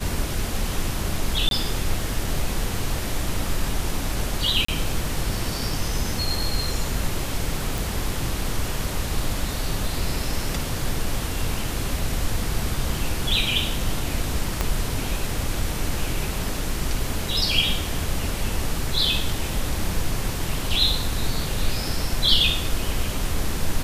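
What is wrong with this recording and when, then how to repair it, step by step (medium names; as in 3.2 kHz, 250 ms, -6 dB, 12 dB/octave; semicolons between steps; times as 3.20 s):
1.49–1.51 s: dropout 22 ms
4.65–4.68 s: dropout 34 ms
7.78 s: pop
14.61 s: pop -7 dBFS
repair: de-click; interpolate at 1.49 s, 22 ms; interpolate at 4.65 s, 34 ms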